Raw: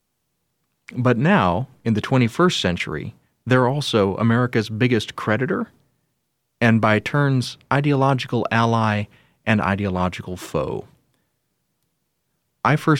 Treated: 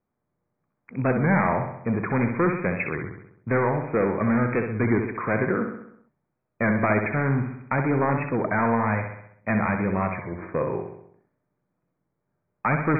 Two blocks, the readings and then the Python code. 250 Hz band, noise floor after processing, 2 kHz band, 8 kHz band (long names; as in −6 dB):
−4.0 dB, −79 dBFS, −4.0 dB, below −40 dB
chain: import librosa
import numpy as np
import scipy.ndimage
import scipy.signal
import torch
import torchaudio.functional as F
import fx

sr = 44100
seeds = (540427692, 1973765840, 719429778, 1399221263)

y = np.clip(x, -10.0 ** (-14.0 / 20.0), 10.0 ** (-14.0 / 20.0))
y = fx.brickwall_lowpass(y, sr, high_hz=2500.0)
y = fx.low_shelf(y, sr, hz=76.0, db=-9.5)
y = fx.echo_feedback(y, sr, ms=65, feedback_pct=55, wet_db=-6.5)
y = fx.env_lowpass(y, sr, base_hz=1300.0, full_db=-18.5)
y = fx.record_warp(y, sr, rpm=33.33, depth_cents=100.0)
y = F.gain(torch.from_numpy(y), -2.5).numpy()